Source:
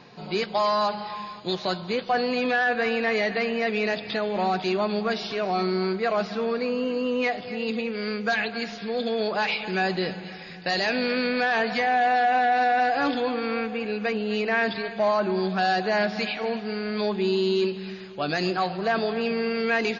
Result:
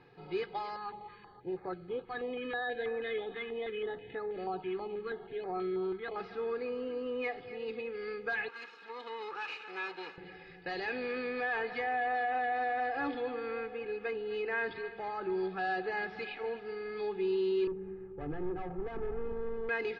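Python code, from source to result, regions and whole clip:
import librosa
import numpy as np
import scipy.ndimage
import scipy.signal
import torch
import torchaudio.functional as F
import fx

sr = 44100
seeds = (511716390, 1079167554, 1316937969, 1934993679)

y = fx.chain(x, sr, fx.resample_bad(factor=8, down='filtered', up='hold'),
    fx.brickwall_lowpass(high_hz=4600.0),
    fx.filter_held_notch(hz=6.2, low_hz=590.0, high_hz=3100.0), at=(0.76, 6.16))
y = fx.chain(y, sr, fx.lower_of_two(delay_ms=0.75),
    fx.highpass(hz=510.0, slope=12), at=(8.48, 10.18))
y = fx.chain(y, sr, fx.lowpass(hz=1100.0, slope=12),
    fx.overload_stage(gain_db=29.5),
    fx.tilt_eq(slope=-2.5), at=(17.67, 19.69))
y = scipy.signal.sosfilt(scipy.signal.butter(2, 1900.0, 'lowpass', fs=sr, output='sos'), y)
y = fx.peak_eq(y, sr, hz=700.0, db=-6.5, octaves=2.0)
y = y + 0.8 * np.pad(y, (int(2.4 * sr / 1000.0), 0))[:len(y)]
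y = y * librosa.db_to_amplitude(-7.5)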